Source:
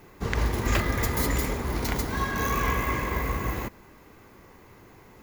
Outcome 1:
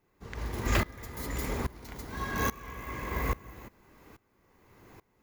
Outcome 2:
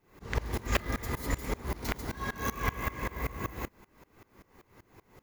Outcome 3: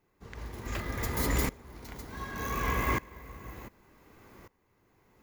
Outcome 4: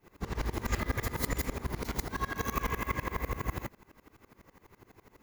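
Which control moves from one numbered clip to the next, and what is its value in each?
dB-ramp tremolo, rate: 1.2, 5.2, 0.67, 12 Hz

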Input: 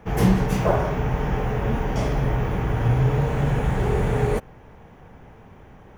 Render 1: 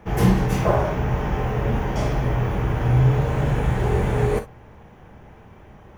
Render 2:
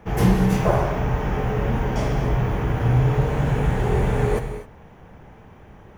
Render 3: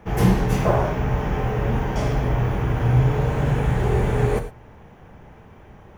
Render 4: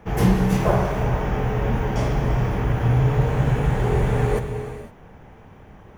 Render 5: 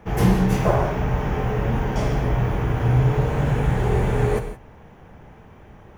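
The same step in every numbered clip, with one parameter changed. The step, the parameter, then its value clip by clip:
non-linear reverb, gate: 80, 280, 130, 530, 190 ms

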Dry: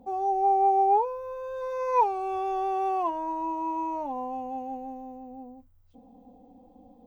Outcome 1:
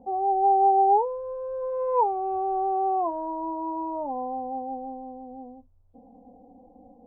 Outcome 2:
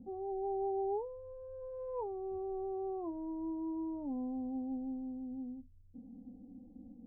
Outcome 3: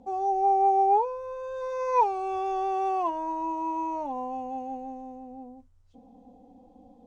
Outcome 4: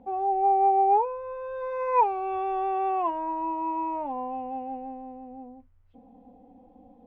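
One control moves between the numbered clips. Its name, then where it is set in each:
synth low-pass, frequency: 720, 240, 7400, 2300 Hz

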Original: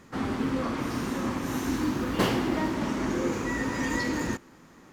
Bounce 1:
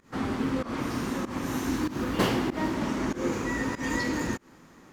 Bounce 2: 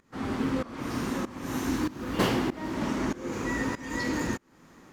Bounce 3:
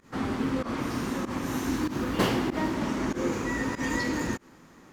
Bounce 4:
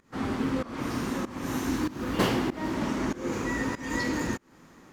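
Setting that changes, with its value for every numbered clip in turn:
pump, release: 0.157, 0.469, 0.105, 0.317 s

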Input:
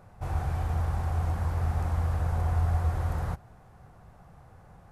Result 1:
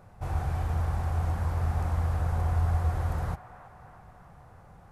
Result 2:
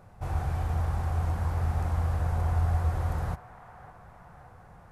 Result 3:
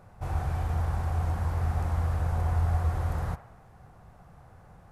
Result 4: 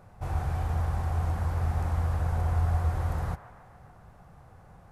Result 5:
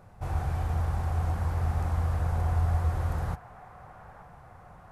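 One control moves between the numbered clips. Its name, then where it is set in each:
band-limited delay, time: 324, 568, 61, 145, 882 ms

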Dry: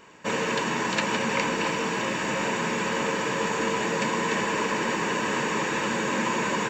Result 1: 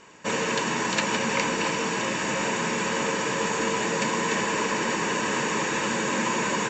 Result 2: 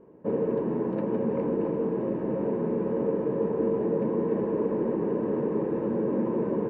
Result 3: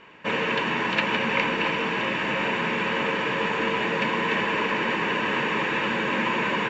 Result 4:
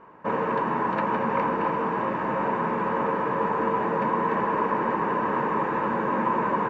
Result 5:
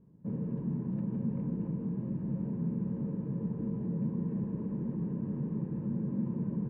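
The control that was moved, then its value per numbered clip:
synth low-pass, frequency: 7200, 430, 2800, 1100, 160 Hz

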